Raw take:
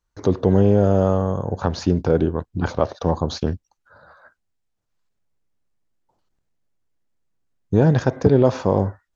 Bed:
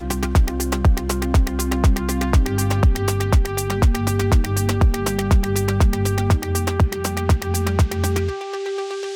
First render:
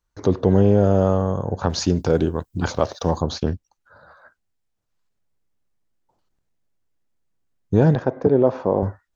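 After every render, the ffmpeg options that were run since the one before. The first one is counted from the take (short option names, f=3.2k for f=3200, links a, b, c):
-filter_complex "[0:a]asettb=1/sr,asplit=3[a][b][c];[a]atrim=end=1.694[d];[b]atrim=start=1.69:end=3.22,asetpts=PTS-STARTPTS,afade=t=in:d=0.004:c=qsin,afade=t=out:st=1.526:d=0.004:c=qsin,aemphasis=mode=production:type=75fm[e];[c]atrim=start=3.216[f];[d][e]acrossfade=d=0.004:c1=hsin:c2=qsin[g];[g][f]acrossfade=d=0.004:c1=qsin:c2=hsin,asettb=1/sr,asplit=3[h][i][j];[h]atrim=end=7.954[k];[i]atrim=start=7.95:end=8.83,asetpts=PTS-STARTPTS,afade=t=in:d=0.004:c=qsin,afade=t=out:st=0.876:d=0.004:c=qsin,bandpass=f=500:t=q:w=0.57[l];[j]atrim=start=8.826[m];[k][l]acrossfade=d=0.004:c1=hsin:c2=qsin[n];[n][m]acrossfade=d=0.004:c1=qsin:c2=hsin"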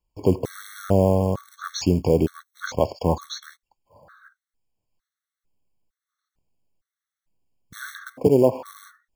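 -af "acrusher=bits=6:mode=log:mix=0:aa=0.000001,afftfilt=real='re*gt(sin(2*PI*1.1*pts/sr)*(1-2*mod(floor(b*sr/1024/1100),2)),0)':imag='im*gt(sin(2*PI*1.1*pts/sr)*(1-2*mod(floor(b*sr/1024/1100),2)),0)':win_size=1024:overlap=0.75"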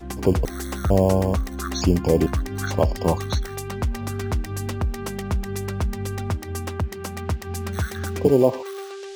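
-filter_complex "[1:a]volume=-8.5dB[a];[0:a][a]amix=inputs=2:normalize=0"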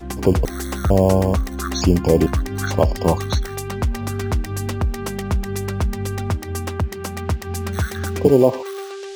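-af "volume=3.5dB,alimiter=limit=-2dB:level=0:latency=1"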